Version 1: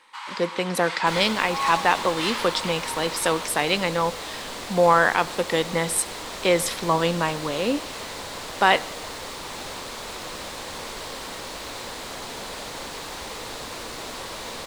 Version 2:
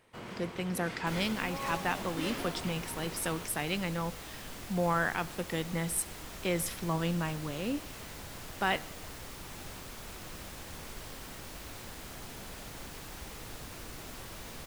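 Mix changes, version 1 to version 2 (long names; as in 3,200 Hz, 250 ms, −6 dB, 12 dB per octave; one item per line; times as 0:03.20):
first sound: remove linear-phase brick-wall band-pass 780–13,000 Hz
master: add octave-band graphic EQ 250/500/1,000/2,000/4,000/8,000 Hz −5/−11/−11/−6/−12/−8 dB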